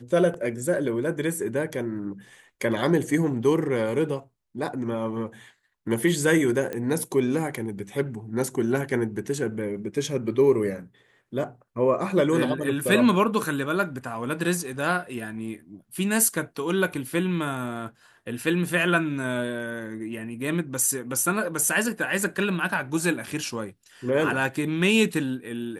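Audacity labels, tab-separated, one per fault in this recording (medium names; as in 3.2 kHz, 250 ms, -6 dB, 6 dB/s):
6.730000	6.730000	pop -18 dBFS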